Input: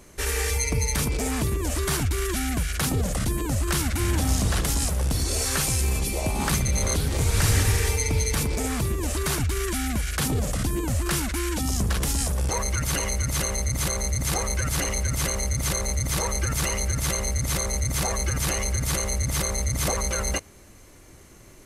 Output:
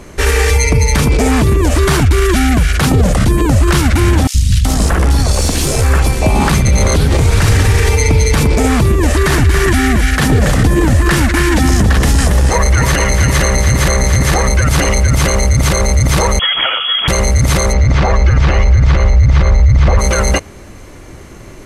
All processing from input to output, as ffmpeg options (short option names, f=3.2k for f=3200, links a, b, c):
-filter_complex "[0:a]asettb=1/sr,asplit=3[a][b][c];[a]atrim=end=4.274[d];[b]atrim=start=4.27:end=6.22,asetpts=PTS-STARTPTS,afade=t=in:d=0.004:c=qsin,afade=t=out:st=1.946:d=0.004:c=qsin,aeval=exprs='if(lt(val(0),0),0.708*val(0),val(0))':c=same,acrossover=split=160|2500[e][f][g];[e]adelay=70[h];[f]adelay=380[i];[h][i][g]amix=inputs=3:normalize=0,atrim=end_sample=85995[j];[c]atrim=start=6.216[k];[d][j]acrossfade=d=0.004:c1=hsin:c2=qsin[l];[l][k]acrossfade=d=0.004:c1=qsin:c2=hsin,asettb=1/sr,asplit=3[m][n][o];[m]atrim=end=9.004[p];[n]atrim=start=9:end=14.5,asetpts=PTS-STARTPTS,afade=t=in:d=0.004:c=qsin,afade=t=out:st=5.496:d=0.004:c=qsin,equalizer=f=1.8k:t=o:w=0.21:g=8,aecho=1:1:279:0.398,atrim=end_sample=242550[q];[o]atrim=start=14.496[r];[p][q]acrossfade=d=0.004:c1=hsin:c2=qsin[s];[s][r]acrossfade=d=0.004:c1=qsin:c2=hsin,asettb=1/sr,asplit=3[t][u][v];[t]atrim=end=16.394[w];[u]atrim=start=16.39:end=17.08,asetpts=PTS-STARTPTS,afade=t=in:d=0.004:c=qsin,afade=t=out:st=0.686:d=0.004:c=qsin,highpass=72,bandreject=f=760:w=7,lowpass=f=2.9k:t=q:w=0.5098,lowpass=f=2.9k:t=q:w=0.6013,lowpass=f=2.9k:t=q:w=0.9,lowpass=f=2.9k:t=q:w=2.563,afreqshift=-3400[x];[v]atrim=start=17.076[y];[w][x]acrossfade=d=0.004:c1=hsin:c2=qsin[z];[z][y]acrossfade=d=0.004:c1=qsin:c2=hsin,asettb=1/sr,asplit=3[aa][ab][ac];[aa]atrim=end=17.734[ad];[ab]atrim=start=17.73:end=19.99,asetpts=PTS-STARTPTS,afade=t=in:d=0.004:c=qsin,afade=t=out:st=2.256:d=0.004:c=qsin,acrossover=split=3100[ae][af];[af]acompressor=threshold=-35dB:ratio=4:attack=1:release=60[ag];[ae][ag]amix=inputs=2:normalize=0,lowpass=f=5.8k:w=0.5412,lowpass=f=5.8k:w=1.3066,asubboost=boost=6:cutoff=130[ah];[ac]atrim=start=19.986[ai];[ad][ah]acrossfade=d=0.004:c1=hsin:c2=qsin[aj];[aj][ai]acrossfade=d=0.004:c1=qsin:c2=hsin,lowpass=f=2.9k:p=1,alimiter=level_in=17.5dB:limit=-1dB:release=50:level=0:latency=1,volume=-1dB"